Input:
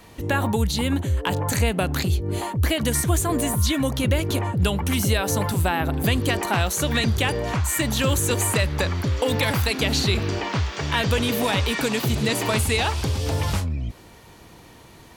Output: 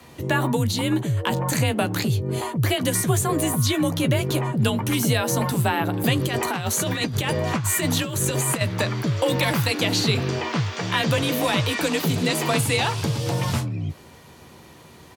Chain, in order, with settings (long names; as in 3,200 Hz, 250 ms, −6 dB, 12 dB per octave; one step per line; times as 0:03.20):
0:06.17–0:08.61: compressor whose output falls as the input rises −23 dBFS, ratio −0.5
frequency shifter +35 Hz
double-tracking delay 13 ms −11 dB